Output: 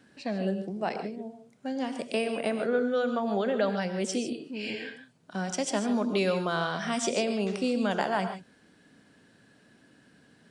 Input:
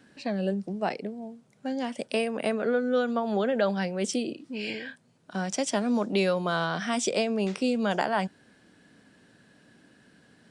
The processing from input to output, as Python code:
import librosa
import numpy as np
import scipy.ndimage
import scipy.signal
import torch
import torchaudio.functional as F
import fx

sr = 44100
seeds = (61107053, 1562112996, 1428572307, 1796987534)

y = fx.rev_gated(x, sr, seeds[0], gate_ms=170, shape='rising', drr_db=7.5)
y = F.gain(torch.from_numpy(y), -2.0).numpy()